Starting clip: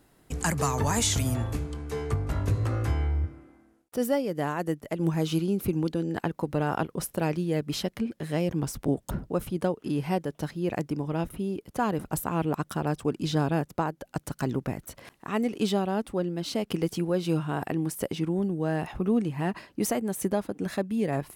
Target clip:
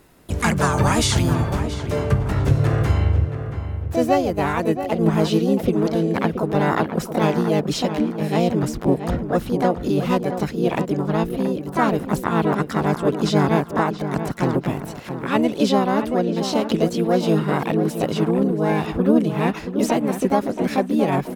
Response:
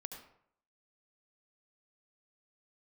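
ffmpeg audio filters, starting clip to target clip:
-filter_complex "[0:a]acrossover=split=6400[s0][s1];[s1]acompressor=threshold=0.00251:ratio=4:attack=1:release=60[s2];[s0][s2]amix=inputs=2:normalize=0,asplit=2[s3][s4];[s4]asetrate=58866,aresample=44100,atempo=0.749154,volume=0.794[s5];[s3][s5]amix=inputs=2:normalize=0,asplit=2[s6][s7];[s7]adelay=677,lowpass=f=2100:p=1,volume=0.355,asplit=2[s8][s9];[s9]adelay=677,lowpass=f=2100:p=1,volume=0.38,asplit=2[s10][s11];[s11]adelay=677,lowpass=f=2100:p=1,volume=0.38,asplit=2[s12][s13];[s13]adelay=677,lowpass=f=2100:p=1,volume=0.38[s14];[s6][s8][s10][s12][s14]amix=inputs=5:normalize=0,volume=2"

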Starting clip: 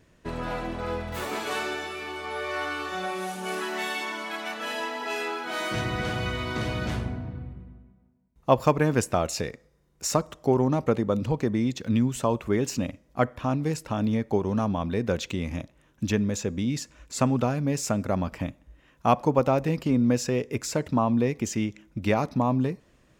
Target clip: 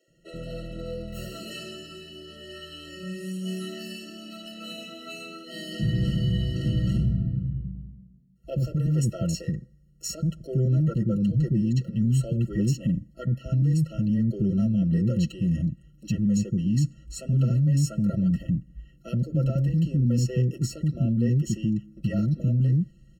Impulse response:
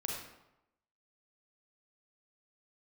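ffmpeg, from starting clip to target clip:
-filter_complex "[0:a]lowshelf=f=71:g=-10,aecho=1:1:5.8:0.7,asubboost=boost=10:cutoff=160,alimiter=limit=0.224:level=0:latency=1:release=10,asuperstop=centerf=1600:order=12:qfactor=3.5,acrossover=split=360[s0][s1];[s0]adelay=80[s2];[s2][s1]amix=inputs=2:normalize=0,afftfilt=real='re*eq(mod(floor(b*sr/1024/650),2),0)':imag='im*eq(mod(floor(b*sr/1024/650),2),0)':win_size=1024:overlap=0.75,volume=0.708"

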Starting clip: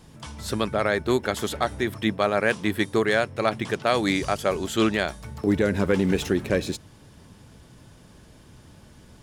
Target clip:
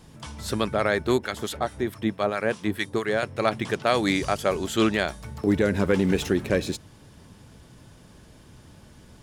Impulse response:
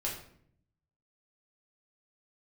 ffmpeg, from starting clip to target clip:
-filter_complex "[0:a]asettb=1/sr,asplit=3[s0][s1][s2];[s0]atrim=end=1.184[s3];[s1]atrim=start=1.18:end=3.23,asetpts=PTS-STARTPTS,afade=t=in:d=0.004:c=qsin,afade=t=out:st=2.046:d=0.004:c=qsin,acrossover=split=1100[s4][s5];[s4]aeval=exprs='val(0)*(1-0.7/2+0.7/2*cos(2*PI*4.6*n/s))':c=same[s6];[s5]aeval=exprs='val(0)*(1-0.7/2-0.7/2*cos(2*PI*4.6*n/s))':c=same[s7];[s6][s7]amix=inputs=2:normalize=0[s8];[s2]atrim=start=3.226[s9];[s3][s8]acrossfade=d=0.004:c1=hsin:c2=qsin[s10];[s10][s9]acrossfade=d=0.004:c1=qsin:c2=hsin"

